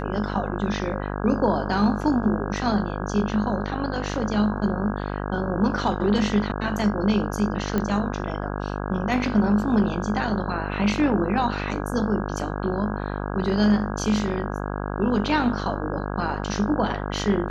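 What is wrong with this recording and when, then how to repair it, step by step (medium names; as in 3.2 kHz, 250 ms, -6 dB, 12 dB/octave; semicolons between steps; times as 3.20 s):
buzz 50 Hz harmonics 33 -29 dBFS
7.78 s: pop -12 dBFS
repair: de-click; de-hum 50 Hz, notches 33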